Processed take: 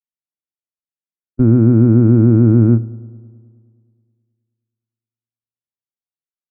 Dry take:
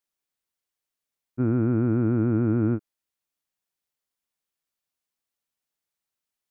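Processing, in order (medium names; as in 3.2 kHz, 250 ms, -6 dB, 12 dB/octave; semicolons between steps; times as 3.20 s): high-pass 100 Hz; gate with hold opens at -23 dBFS; tilt EQ -3.5 dB/octave; bucket-brigade echo 105 ms, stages 1024, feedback 70%, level -22 dB; on a send at -15 dB: reverberation RT60 0.25 s, pre-delay 4 ms; on the sum: trim +3.5 dB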